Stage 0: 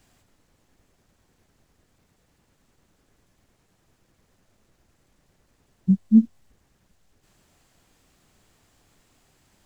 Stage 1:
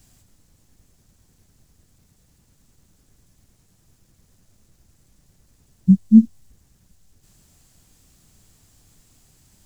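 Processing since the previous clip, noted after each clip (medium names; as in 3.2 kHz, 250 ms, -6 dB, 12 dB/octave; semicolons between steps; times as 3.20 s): tone controls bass +11 dB, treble +12 dB; trim -2 dB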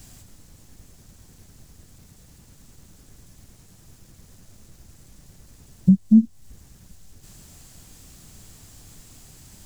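compression 2.5:1, threshold -26 dBFS, peak gain reduction 14 dB; trim +9 dB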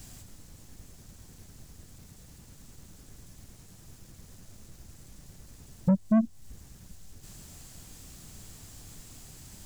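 saturation -17 dBFS, distortion -9 dB; trim -1 dB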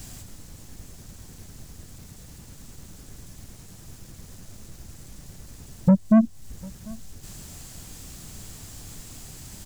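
delay 747 ms -23.5 dB; trim +6.5 dB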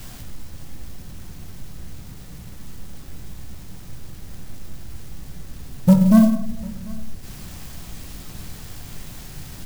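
on a send at -2 dB: reverberation RT60 0.75 s, pre-delay 5 ms; on the sum: sampling jitter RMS 0.033 ms; trim +2 dB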